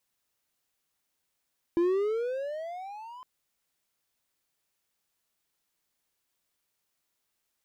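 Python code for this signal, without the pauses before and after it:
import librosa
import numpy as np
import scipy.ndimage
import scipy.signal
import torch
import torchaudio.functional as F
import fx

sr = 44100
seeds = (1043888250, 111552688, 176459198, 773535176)

y = fx.riser_tone(sr, length_s=1.46, level_db=-19.0, wave='triangle', hz=335.0, rise_st=19.5, swell_db=-22)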